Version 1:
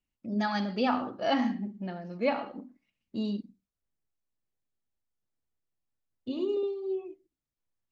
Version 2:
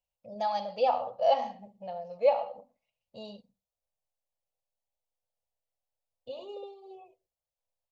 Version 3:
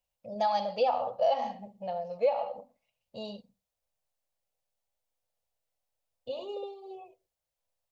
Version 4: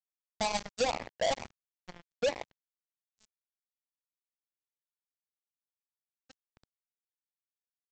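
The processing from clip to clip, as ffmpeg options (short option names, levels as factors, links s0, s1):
-af "firequalizer=gain_entry='entry(120,0);entry(320,-23);entry(500,13);entry(790,12);entry(1500,-10);entry(2600,3)':delay=0.05:min_phase=1,volume=0.447"
-af "acompressor=threshold=0.0501:ratio=10,volume=1.58"
-af "equalizer=f=200:w=0.66:g=3.5,aresample=16000,acrusher=bits=3:mix=0:aa=0.5,aresample=44100,bass=f=250:g=11,treble=f=4000:g=13,volume=0.473"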